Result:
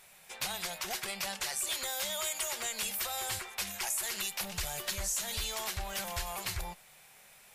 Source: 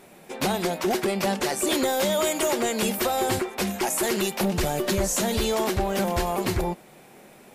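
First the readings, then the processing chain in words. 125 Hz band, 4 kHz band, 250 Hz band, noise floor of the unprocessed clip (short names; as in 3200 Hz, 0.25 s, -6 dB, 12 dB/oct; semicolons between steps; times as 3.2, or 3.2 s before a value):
-15.0 dB, -5.0 dB, -25.0 dB, -51 dBFS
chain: passive tone stack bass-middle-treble 10-0-10; compressor 2.5:1, threshold -33 dBFS, peak gain reduction 6.5 dB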